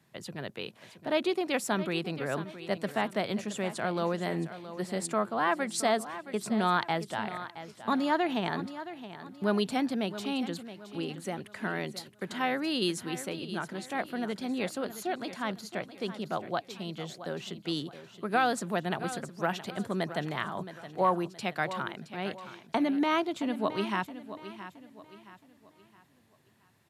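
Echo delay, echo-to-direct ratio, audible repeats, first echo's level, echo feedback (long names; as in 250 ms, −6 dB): 670 ms, −12.5 dB, 3, −13.0 dB, 38%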